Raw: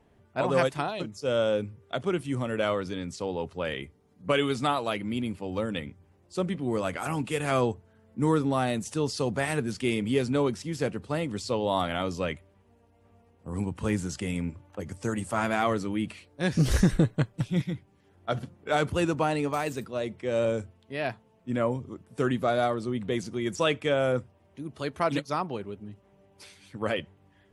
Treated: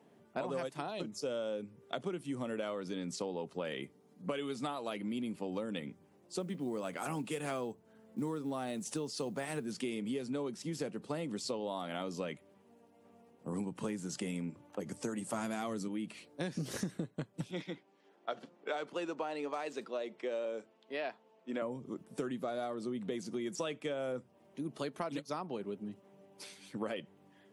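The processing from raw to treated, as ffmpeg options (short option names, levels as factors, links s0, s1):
-filter_complex "[0:a]asettb=1/sr,asplit=3[s0][s1][s2];[s0]atrim=end=6.404[s3];[s1]atrim=start=6.4:end=9.66,asetpts=PTS-STARTPTS,afade=t=in:d=0.004:c=qsin,afade=t=out:st=3.256:d=0.004:c=qsin,acrusher=bits=9:mode=log:mix=0:aa=0.000001[s4];[s2]atrim=start=9.656[s5];[s3][s4]acrossfade=d=0.004:c1=hsin:c2=qsin[s6];[s6][s5]acrossfade=d=0.004:c1=qsin:c2=hsin,asettb=1/sr,asplit=3[s7][s8][s9];[s7]atrim=end=15.334[s10];[s8]atrim=start=15.33:end=15.88,asetpts=PTS-STARTPTS,afade=t=in:d=0.004:c=qsin,afade=t=out:st=0.546:d=0.004:c=qsin,bass=f=250:g=8,treble=f=4000:g=9[s11];[s9]atrim=start=15.876[s12];[s10][s11]acrossfade=d=0.004:c1=hsin:c2=qsin[s13];[s13][s12]acrossfade=d=0.004:c1=qsin:c2=hsin,asettb=1/sr,asplit=3[s14][s15][s16];[s14]atrim=end=17.514[s17];[s15]atrim=start=17.51:end=21.62,asetpts=PTS-STARTPTS,afade=t=in:d=0.004:c=qsin,afade=t=out:st=4.106:d=0.004:c=qsin,highpass=390,lowpass=5200[s18];[s16]atrim=start=21.616[s19];[s17][s18]acrossfade=d=0.004:c1=hsin:c2=qsin[s20];[s20][s19]acrossfade=d=0.004:c1=qsin:c2=hsin,highpass=f=160:w=0.5412,highpass=f=160:w=1.3066,equalizer=f=1800:w=0.66:g=-4,acompressor=threshold=0.0158:ratio=10,volume=1.19"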